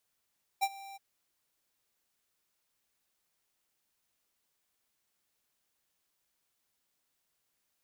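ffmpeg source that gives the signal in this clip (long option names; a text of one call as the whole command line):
ffmpeg -f lavfi -i "aevalsrc='0.0473*(2*lt(mod(786*t,1),0.5)-1)':duration=0.371:sample_rate=44100,afade=type=in:duration=0.023,afade=type=out:start_time=0.023:duration=0.048:silence=0.0944,afade=type=out:start_time=0.35:duration=0.021" out.wav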